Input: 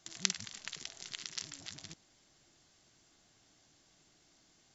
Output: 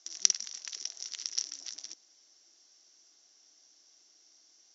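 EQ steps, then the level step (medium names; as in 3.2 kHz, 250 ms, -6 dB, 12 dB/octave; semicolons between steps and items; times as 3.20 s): high-pass 300 Hz 24 dB/octave; resonant low-pass 5.7 kHz, resonance Q 9.7; -5.5 dB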